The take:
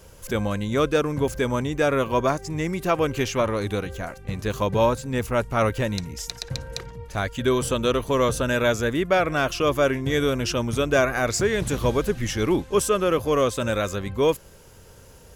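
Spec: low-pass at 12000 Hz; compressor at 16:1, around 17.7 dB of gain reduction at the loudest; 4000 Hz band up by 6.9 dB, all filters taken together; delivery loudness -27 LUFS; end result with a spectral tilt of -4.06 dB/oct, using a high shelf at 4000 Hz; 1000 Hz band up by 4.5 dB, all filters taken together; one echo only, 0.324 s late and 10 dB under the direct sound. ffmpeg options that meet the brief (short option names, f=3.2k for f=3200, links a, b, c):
-af "lowpass=12k,equalizer=f=1k:t=o:g=5,highshelf=f=4k:g=3.5,equalizer=f=4k:t=o:g=6.5,acompressor=threshold=-31dB:ratio=16,aecho=1:1:324:0.316,volume=8dB"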